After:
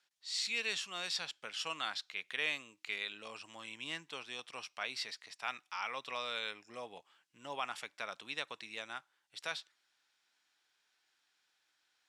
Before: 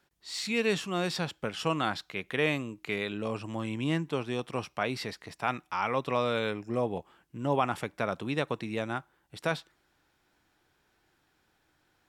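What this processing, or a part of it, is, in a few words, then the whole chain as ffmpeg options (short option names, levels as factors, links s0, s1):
piezo pickup straight into a mixer: -af "lowpass=5100,aderivative,equalizer=f=360:w=5.7:g=-3,volume=2"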